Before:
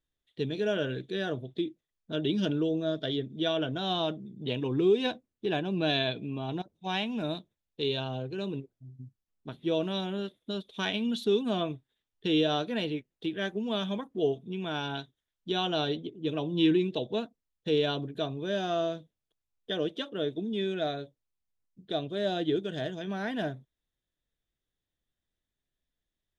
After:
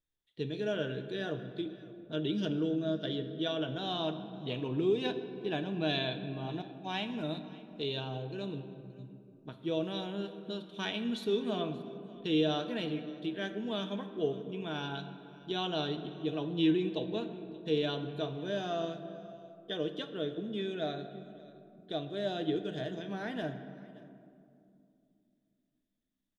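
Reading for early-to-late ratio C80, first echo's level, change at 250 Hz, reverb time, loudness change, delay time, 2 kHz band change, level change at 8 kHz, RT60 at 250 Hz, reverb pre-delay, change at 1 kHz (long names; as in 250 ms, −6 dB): 10.5 dB, −21.5 dB, −3.5 dB, 2.5 s, −4.0 dB, 577 ms, −4.5 dB, can't be measured, 3.6 s, 6 ms, −4.5 dB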